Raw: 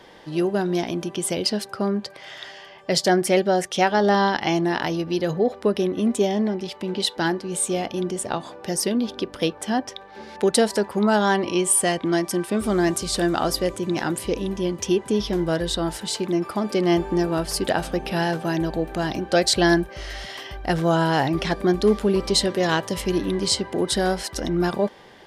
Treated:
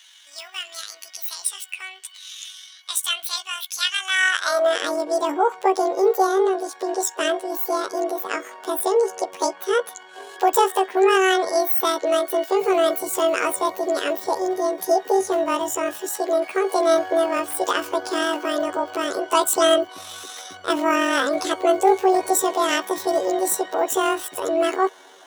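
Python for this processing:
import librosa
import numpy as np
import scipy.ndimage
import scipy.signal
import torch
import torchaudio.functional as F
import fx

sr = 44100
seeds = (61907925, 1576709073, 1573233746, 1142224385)

y = fx.pitch_heads(x, sr, semitones=11.0)
y = fx.filter_sweep_highpass(y, sr, from_hz=2800.0, to_hz=380.0, start_s=4.05, end_s=4.82, q=1.9)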